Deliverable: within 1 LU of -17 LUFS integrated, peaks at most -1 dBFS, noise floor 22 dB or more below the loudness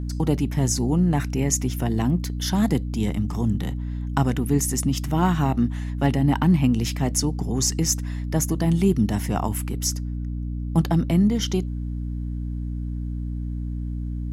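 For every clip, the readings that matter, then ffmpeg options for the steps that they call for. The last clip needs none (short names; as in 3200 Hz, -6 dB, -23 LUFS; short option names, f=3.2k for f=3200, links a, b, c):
hum 60 Hz; harmonics up to 300 Hz; hum level -26 dBFS; loudness -23.5 LUFS; peak -6.0 dBFS; loudness target -17.0 LUFS
-> -af "bandreject=f=60:t=h:w=4,bandreject=f=120:t=h:w=4,bandreject=f=180:t=h:w=4,bandreject=f=240:t=h:w=4,bandreject=f=300:t=h:w=4"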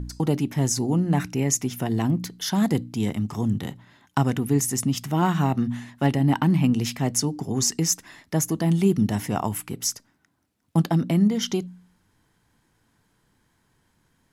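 hum none; loudness -24.0 LUFS; peak -6.5 dBFS; loudness target -17.0 LUFS
-> -af "volume=7dB,alimiter=limit=-1dB:level=0:latency=1"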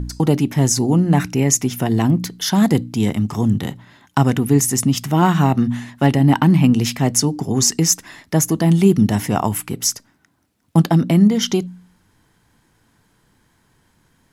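loudness -17.0 LUFS; peak -1.0 dBFS; noise floor -61 dBFS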